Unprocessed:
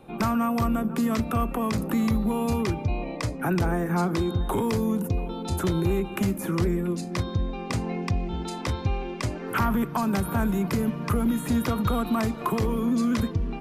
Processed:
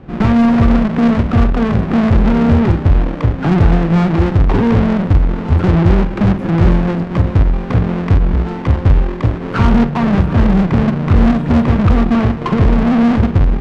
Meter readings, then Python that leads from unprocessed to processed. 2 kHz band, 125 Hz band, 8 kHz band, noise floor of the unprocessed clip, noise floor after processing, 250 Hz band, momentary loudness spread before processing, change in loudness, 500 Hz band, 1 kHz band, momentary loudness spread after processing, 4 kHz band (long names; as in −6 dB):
+10.0 dB, +15.5 dB, can't be measured, −35 dBFS, −23 dBFS, +12.5 dB, 5 LU, +13.0 dB, +10.0 dB, +8.5 dB, 4 LU, +6.5 dB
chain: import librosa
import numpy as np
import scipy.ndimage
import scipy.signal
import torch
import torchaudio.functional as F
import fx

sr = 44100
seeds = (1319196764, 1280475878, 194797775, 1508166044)

p1 = fx.halfwave_hold(x, sr)
p2 = scipy.signal.sosfilt(scipy.signal.butter(2, 2200.0, 'lowpass', fs=sr, output='sos'), p1)
p3 = fx.low_shelf(p2, sr, hz=230.0, db=10.0)
p4 = p3 + fx.room_flutter(p3, sr, wall_m=8.1, rt60_s=0.26, dry=0)
p5 = fx.cheby_harmonics(p4, sr, harmonics=(8,), levels_db=(-23,), full_scale_db=-4.0)
y = F.gain(torch.from_numpy(p5), 3.0).numpy()